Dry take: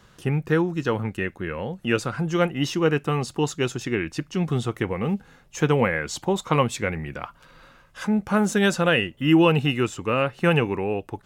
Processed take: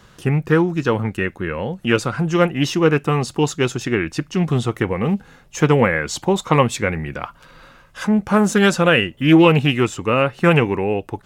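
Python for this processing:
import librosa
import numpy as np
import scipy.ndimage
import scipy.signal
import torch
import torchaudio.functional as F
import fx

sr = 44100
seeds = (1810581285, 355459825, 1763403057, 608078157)

y = fx.doppler_dist(x, sr, depth_ms=0.15)
y = y * 10.0 ** (5.5 / 20.0)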